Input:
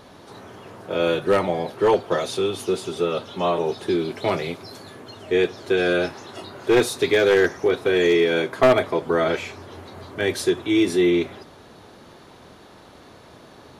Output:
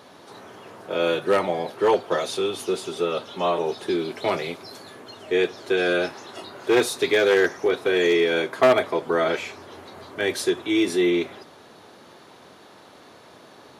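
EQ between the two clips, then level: HPF 94 Hz; low shelf 210 Hz -8.5 dB; 0.0 dB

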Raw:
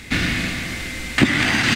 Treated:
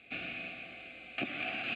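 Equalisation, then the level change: vowel filter a; air absorption 57 m; fixed phaser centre 2400 Hz, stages 4; 0.0 dB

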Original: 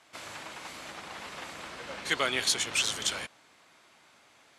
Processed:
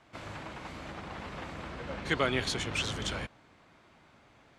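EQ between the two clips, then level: RIAA curve playback; 0.0 dB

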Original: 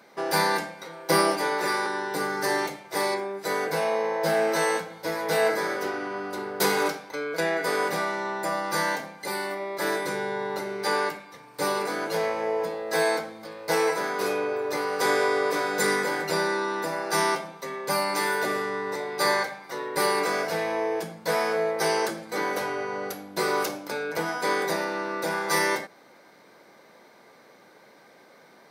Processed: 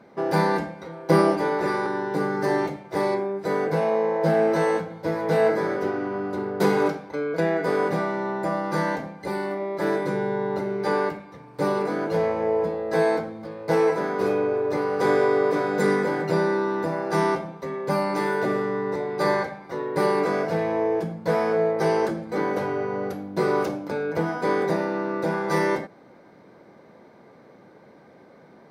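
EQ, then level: tilt -4 dB/oct; 0.0 dB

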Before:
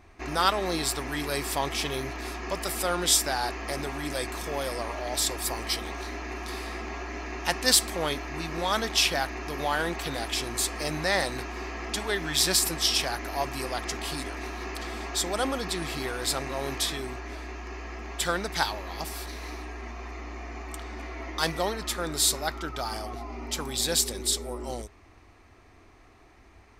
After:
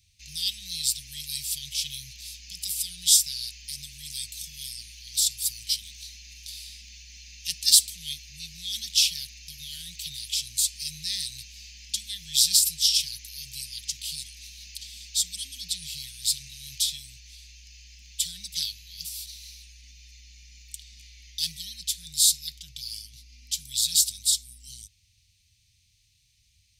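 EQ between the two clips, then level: HPF 120 Hz 6 dB/oct; inverse Chebyshev band-stop 370–1300 Hz, stop band 60 dB; tilt shelf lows -4.5 dB; 0.0 dB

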